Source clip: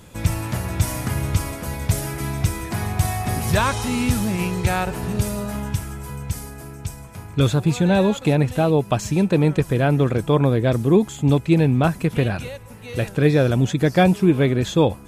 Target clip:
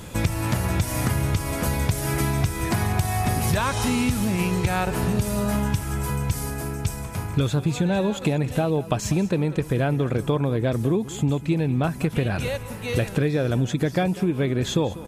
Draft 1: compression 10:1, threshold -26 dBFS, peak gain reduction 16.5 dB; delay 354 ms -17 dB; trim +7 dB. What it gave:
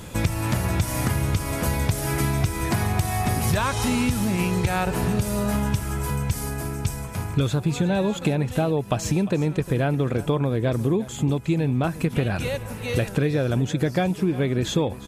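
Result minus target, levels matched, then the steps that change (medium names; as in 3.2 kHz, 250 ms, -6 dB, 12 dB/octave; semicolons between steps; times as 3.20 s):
echo 159 ms late
change: delay 195 ms -17 dB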